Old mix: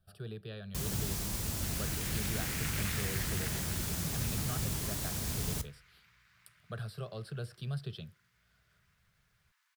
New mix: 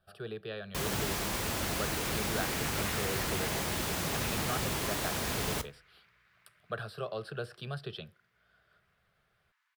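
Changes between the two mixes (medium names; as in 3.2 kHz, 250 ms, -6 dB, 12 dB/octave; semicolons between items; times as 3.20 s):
speech +8.5 dB; first sound +11.0 dB; master: add tone controls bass -14 dB, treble -11 dB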